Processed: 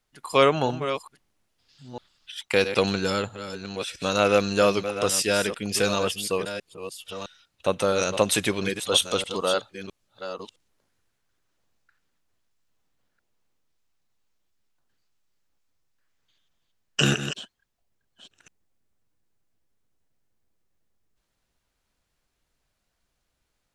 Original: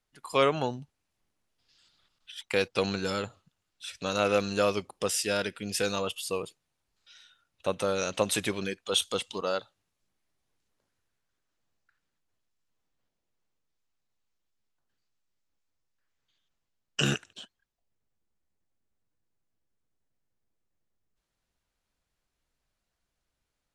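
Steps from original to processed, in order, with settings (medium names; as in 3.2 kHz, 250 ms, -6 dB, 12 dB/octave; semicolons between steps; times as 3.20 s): chunks repeated in reverse 660 ms, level -10 dB; trim +5.5 dB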